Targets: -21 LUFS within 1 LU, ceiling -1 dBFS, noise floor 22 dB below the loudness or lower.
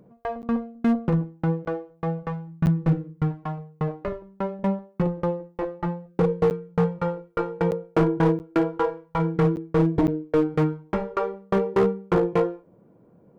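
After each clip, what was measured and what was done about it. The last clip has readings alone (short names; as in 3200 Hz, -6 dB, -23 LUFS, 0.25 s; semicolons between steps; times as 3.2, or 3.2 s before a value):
clipped 1.5%; flat tops at -14.5 dBFS; dropouts 8; longest dropout 9.4 ms; loudness -25.5 LUFS; peak -14.5 dBFS; loudness target -21.0 LUFS
-> clip repair -14.5 dBFS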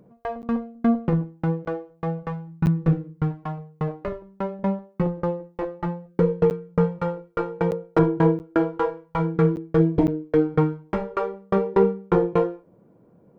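clipped 0.0%; dropouts 8; longest dropout 9.4 ms
-> interpolate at 0.42/1.65/2.66/6.5/7.71/8.39/9.56/10.07, 9.4 ms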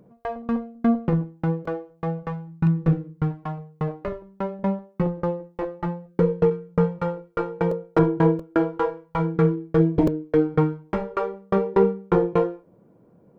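dropouts 0; loudness -24.5 LUFS; peak -6.5 dBFS; loudness target -21.0 LUFS
-> gain +3.5 dB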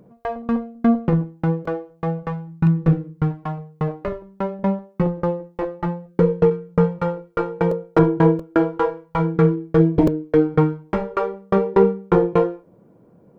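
loudness -21.0 LUFS; peak -3.0 dBFS; noise floor -53 dBFS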